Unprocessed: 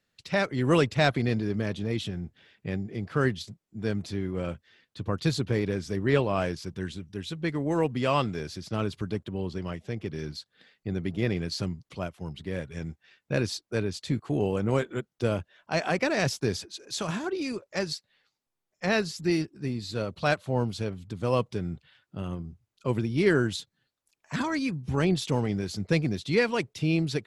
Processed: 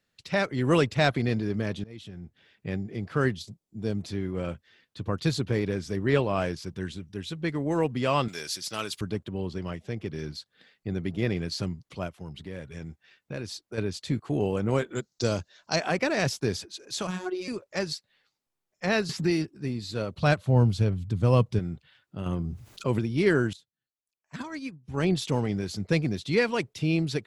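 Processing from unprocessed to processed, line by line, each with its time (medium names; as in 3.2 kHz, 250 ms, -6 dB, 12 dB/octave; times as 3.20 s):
1.84–2.72 s: fade in, from -21 dB
3.36–4.02 s: peaking EQ 1.7 kHz -9.5 dB 1.3 oct
8.28–9.01 s: tilt EQ +4.5 dB/octave
12.17–13.78 s: compression 2:1, threshold -37 dBFS
14.95–15.76 s: high-order bell 5.4 kHz +15.5 dB 1.1 oct
17.07–17.48 s: robot voice 183 Hz
19.09–19.51 s: three bands compressed up and down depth 70%
20.18–21.59 s: peaking EQ 88 Hz +11.5 dB 2.3 oct
22.26–22.99 s: level flattener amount 50%
23.53–25.06 s: upward expansion 2.5:1, over -35 dBFS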